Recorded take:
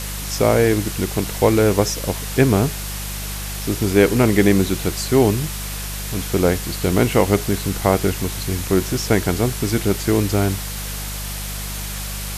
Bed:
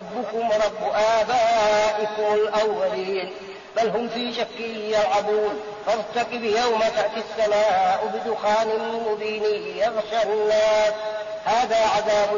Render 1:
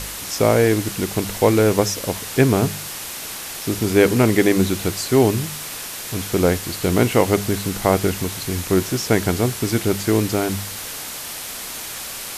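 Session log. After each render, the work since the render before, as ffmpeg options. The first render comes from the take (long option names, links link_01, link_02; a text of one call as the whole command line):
ffmpeg -i in.wav -af "bandreject=frequency=50:width_type=h:width=4,bandreject=frequency=100:width_type=h:width=4,bandreject=frequency=150:width_type=h:width=4,bandreject=frequency=200:width_type=h:width=4" out.wav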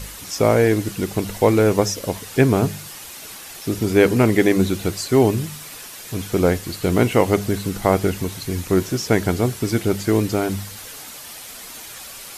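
ffmpeg -i in.wav -af "afftdn=noise_reduction=8:noise_floor=-32" out.wav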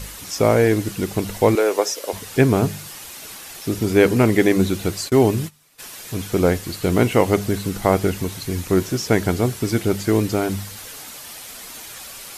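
ffmpeg -i in.wav -filter_complex "[0:a]asettb=1/sr,asplit=3[link_01][link_02][link_03];[link_01]atrim=end=1.554[link_04];[link_02]atrim=start=1.55:end=2.13,asetpts=PTS-STARTPTS,afade=type=in:duration=0.004:curve=qsin,afade=type=out:start_time=0.576:duration=0.004:curve=qsin,highpass=frequency=370:width=0.5412,highpass=frequency=370:width=1.3066[link_05];[link_03]atrim=start=2.126[link_06];[link_04][link_05]acrossfade=duration=0.004:curve1=hsin:curve2=qsin[link_07];[link_07][link_06]acrossfade=duration=0.004:curve1=qsin:curve2=hsin,asplit=3[link_08][link_09][link_10];[link_08]afade=type=out:start_time=5.08:duration=0.02[link_11];[link_09]agate=range=-21dB:threshold=-30dB:ratio=16:release=100:detection=peak,afade=type=in:start_time=5.08:duration=0.02,afade=type=out:start_time=5.78:duration=0.02[link_12];[link_10]afade=type=in:start_time=5.78:duration=0.02[link_13];[link_11][link_12][link_13]amix=inputs=3:normalize=0" out.wav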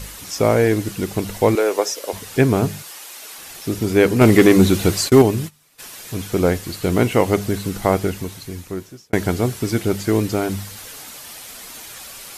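ffmpeg -i in.wav -filter_complex "[0:a]asettb=1/sr,asplit=3[link_01][link_02][link_03];[link_01]atrim=end=2.824[link_04];[link_02]atrim=start=2.82:end=3.38,asetpts=PTS-STARTPTS,afade=type=in:duration=0.004:curve=qsin,afade=type=out:start_time=0.556:duration=0.004:curve=qsin,highpass=420[link_05];[link_03]atrim=start=3.376[link_06];[link_04][link_05]acrossfade=duration=0.004:curve1=hsin:curve2=qsin[link_07];[link_07][link_06]acrossfade=duration=0.004:curve1=qsin:curve2=hsin,asettb=1/sr,asplit=3[link_08][link_09][link_10];[link_08]atrim=end=4.214[link_11];[link_09]atrim=start=4.21:end=5.22,asetpts=PTS-STARTPTS,afade=type=in:duration=0.004:curve=qsin,afade=type=out:start_time=1.006:duration=0.004:curve=qsin,acontrast=72[link_12];[link_10]atrim=start=5.216[link_13];[link_11][link_12]acrossfade=duration=0.004:curve1=hsin:curve2=qsin[link_14];[link_14][link_13]acrossfade=duration=0.004:curve1=qsin:curve2=hsin,asplit=2[link_15][link_16];[link_15]atrim=end=9.13,asetpts=PTS-STARTPTS,afade=type=out:start_time=7.87:duration=1.26[link_17];[link_16]atrim=start=9.13,asetpts=PTS-STARTPTS,afade=type=in:duration=0.004:curve=hsin[link_18];[link_17][link_18]concat=n=2:v=0:a=1" out.wav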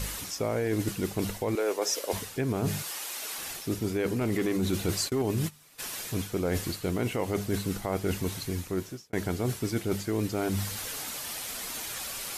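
ffmpeg -i in.wav -af "alimiter=limit=-8.5dB:level=0:latency=1:release=62,areverse,acompressor=threshold=-26dB:ratio=6,areverse" out.wav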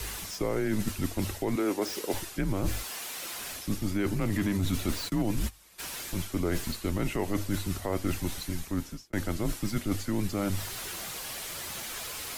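ffmpeg -i in.wav -filter_complex "[0:a]acrossover=split=170|4500[link_01][link_02][link_03];[link_03]aeval=exprs='0.0158*(abs(mod(val(0)/0.0158+3,4)-2)-1)':channel_layout=same[link_04];[link_01][link_02][link_04]amix=inputs=3:normalize=0,afreqshift=-100" out.wav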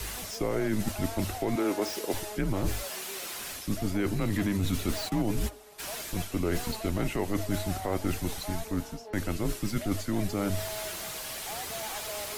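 ffmpeg -i in.wav -i bed.wav -filter_complex "[1:a]volume=-21dB[link_01];[0:a][link_01]amix=inputs=2:normalize=0" out.wav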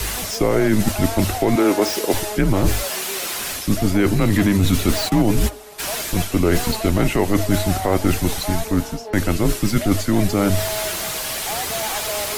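ffmpeg -i in.wav -af "volume=12dB" out.wav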